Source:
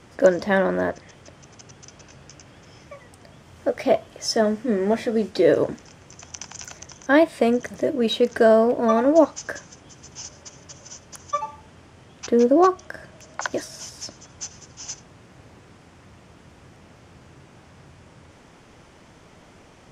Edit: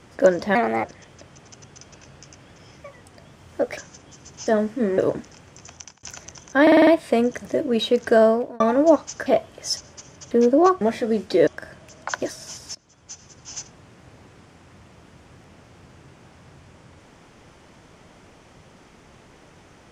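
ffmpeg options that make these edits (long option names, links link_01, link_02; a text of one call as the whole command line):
ffmpeg -i in.wav -filter_complex "[0:a]asplit=19[link_01][link_02][link_03][link_04][link_05][link_06][link_07][link_08][link_09][link_10][link_11][link_12][link_13][link_14][link_15][link_16][link_17][link_18][link_19];[link_01]atrim=end=0.554[link_20];[link_02]atrim=start=0.55:end=0.91,asetpts=PTS-STARTPTS,asetrate=54684,aresample=44100,atrim=end_sample=12803,asetpts=PTS-STARTPTS[link_21];[link_03]atrim=start=0.906:end=3.842[link_22];[link_04]atrim=start=9.548:end=10.252[link_23];[link_05]atrim=start=4.348:end=4.862[link_24];[link_06]atrim=start=5.518:end=6.57,asetpts=PTS-STARTPTS,afade=type=out:start_time=0.722:duration=0.33[link_25];[link_07]atrim=start=6.57:end=7.212,asetpts=PTS-STARTPTS,afade=type=in:duration=0.004:curve=hsin[link_26];[link_08]atrim=start=7.158:end=7.212[link_27];[link_09]atrim=start=7.158:end=7.212[link_28];[link_10]atrim=start=7.158:end=7.212[link_29];[link_11]atrim=start=7.158:end=7.212[link_30];[link_12]atrim=start=7.158:end=8.89,asetpts=PTS-STARTPTS,afade=type=out:start_time=1.392:duration=0.34[link_31];[link_13]atrim=start=8.89:end=9.552,asetpts=PTS-STARTPTS,afade=type=in:duration=0.004:curve=hsin[link_32];[link_14]atrim=start=3.838:end=4.352[link_33];[link_15]atrim=start=10.248:end=10.792[link_34];[link_16]atrim=start=12.288:end=12.792[link_35];[link_17]atrim=start=4.858:end=5.522[link_36];[link_18]atrim=start=12.788:end=14.07,asetpts=PTS-STARTPTS,afade=type=out:start_time=1.278:duration=0.004:curve=hsin:silence=0.11885[link_37];[link_19]atrim=start=14.07,asetpts=PTS-STARTPTS,afade=type=in:duration=0.78:silence=0.11885[link_38];[link_20][link_21]acrossfade=duration=0.004:curve1=hsin:curve2=hsin[link_39];[link_39][link_22]acrossfade=duration=0.004:curve1=hsin:curve2=hsin[link_40];[link_40][link_23]acrossfade=duration=0.004:curve1=hsin:curve2=hsin[link_41];[link_41][link_24]acrossfade=duration=0.004:curve1=hsin:curve2=hsin[link_42];[link_25][link_26]concat=n=2:v=0:a=1[link_43];[link_42][link_43]acrossfade=duration=0.004:curve1=hsin:curve2=hsin[link_44];[link_44][link_27]acrossfade=duration=0.004:curve1=hsin:curve2=hsin[link_45];[link_45][link_28]acrossfade=duration=0.004:curve1=hsin:curve2=hsin[link_46];[link_46][link_29]acrossfade=duration=0.004:curve1=hsin:curve2=hsin[link_47];[link_47][link_30]acrossfade=duration=0.004:curve1=hsin:curve2=hsin[link_48];[link_31][link_32]concat=n=2:v=0:a=1[link_49];[link_48][link_49]acrossfade=duration=0.004:curve1=hsin:curve2=hsin[link_50];[link_50][link_33]acrossfade=duration=0.004:curve1=hsin:curve2=hsin[link_51];[link_51][link_34]acrossfade=duration=0.004:curve1=hsin:curve2=hsin[link_52];[link_52][link_35]acrossfade=duration=0.004:curve1=hsin:curve2=hsin[link_53];[link_53][link_36]acrossfade=duration=0.004:curve1=hsin:curve2=hsin[link_54];[link_37][link_38]concat=n=2:v=0:a=1[link_55];[link_54][link_55]acrossfade=duration=0.004:curve1=hsin:curve2=hsin" out.wav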